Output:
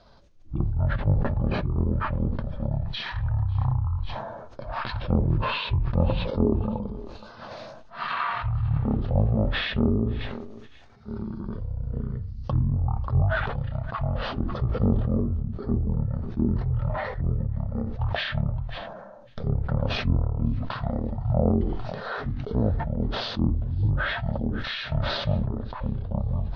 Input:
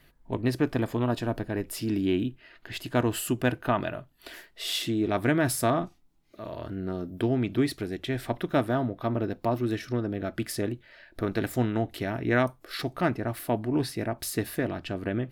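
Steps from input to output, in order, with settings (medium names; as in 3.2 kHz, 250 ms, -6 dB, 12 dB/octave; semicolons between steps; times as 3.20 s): rotating-head pitch shifter -9 st; in parallel at 0 dB: compression, threshold -35 dBFS, peak gain reduction 15 dB; on the sum: low-pass that closes with the level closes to 1.7 kHz, closed at -19.5 dBFS; on a send: thinning echo 315 ms, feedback 34%, high-pass 1.1 kHz, level -23.5 dB; on the sum: speed mistake 78 rpm record played at 45 rpm; decay stretcher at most 33 dB/s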